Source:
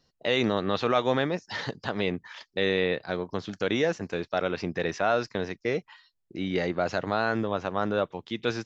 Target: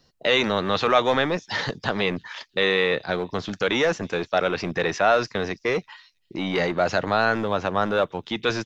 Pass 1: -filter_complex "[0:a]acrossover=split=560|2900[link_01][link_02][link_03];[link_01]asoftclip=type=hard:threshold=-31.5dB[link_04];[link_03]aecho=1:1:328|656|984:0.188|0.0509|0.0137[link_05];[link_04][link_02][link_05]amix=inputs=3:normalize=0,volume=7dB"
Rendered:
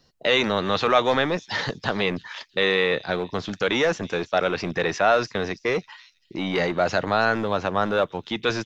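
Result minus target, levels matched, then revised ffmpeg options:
echo-to-direct +7.5 dB
-filter_complex "[0:a]acrossover=split=560|2900[link_01][link_02][link_03];[link_01]asoftclip=type=hard:threshold=-31.5dB[link_04];[link_03]aecho=1:1:328|656:0.075|0.0202[link_05];[link_04][link_02][link_05]amix=inputs=3:normalize=0,volume=7dB"

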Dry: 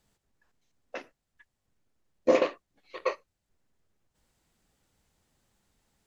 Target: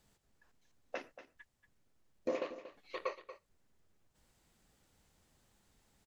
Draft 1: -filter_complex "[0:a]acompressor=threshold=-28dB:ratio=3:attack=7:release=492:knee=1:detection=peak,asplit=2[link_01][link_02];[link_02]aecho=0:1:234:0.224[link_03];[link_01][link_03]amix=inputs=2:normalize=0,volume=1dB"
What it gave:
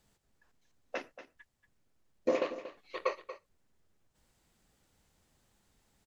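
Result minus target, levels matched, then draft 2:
downward compressor: peak gain reduction −6.5 dB
-filter_complex "[0:a]acompressor=threshold=-38dB:ratio=3:attack=7:release=492:knee=1:detection=peak,asplit=2[link_01][link_02];[link_02]aecho=0:1:234:0.224[link_03];[link_01][link_03]amix=inputs=2:normalize=0,volume=1dB"

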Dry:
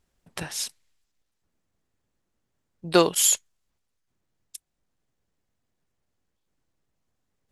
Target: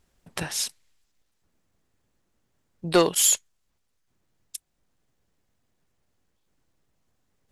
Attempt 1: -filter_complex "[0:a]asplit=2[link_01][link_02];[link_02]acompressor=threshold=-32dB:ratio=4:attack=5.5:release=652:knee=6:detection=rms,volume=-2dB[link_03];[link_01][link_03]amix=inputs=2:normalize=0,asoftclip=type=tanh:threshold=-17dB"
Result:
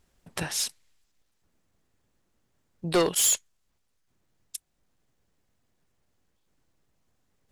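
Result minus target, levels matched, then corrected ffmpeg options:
soft clipping: distortion +9 dB
-filter_complex "[0:a]asplit=2[link_01][link_02];[link_02]acompressor=threshold=-32dB:ratio=4:attack=5.5:release=652:knee=6:detection=rms,volume=-2dB[link_03];[link_01][link_03]amix=inputs=2:normalize=0,asoftclip=type=tanh:threshold=-8.5dB"

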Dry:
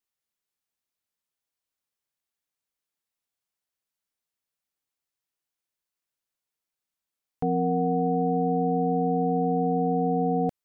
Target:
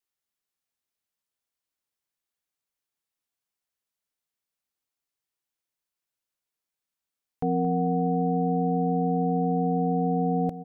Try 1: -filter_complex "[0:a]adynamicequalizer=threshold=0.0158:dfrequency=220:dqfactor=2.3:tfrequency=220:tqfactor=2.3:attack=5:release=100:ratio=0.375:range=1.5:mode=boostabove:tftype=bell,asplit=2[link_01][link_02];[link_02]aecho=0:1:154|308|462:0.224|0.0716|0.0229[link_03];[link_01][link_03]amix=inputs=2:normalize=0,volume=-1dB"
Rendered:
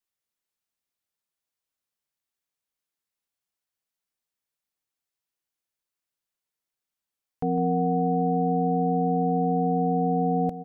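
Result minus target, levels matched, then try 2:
echo 70 ms early
-filter_complex "[0:a]adynamicequalizer=threshold=0.0158:dfrequency=220:dqfactor=2.3:tfrequency=220:tqfactor=2.3:attack=5:release=100:ratio=0.375:range=1.5:mode=boostabove:tftype=bell,asplit=2[link_01][link_02];[link_02]aecho=0:1:224|448|672:0.224|0.0716|0.0229[link_03];[link_01][link_03]amix=inputs=2:normalize=0,volume=-1dB"

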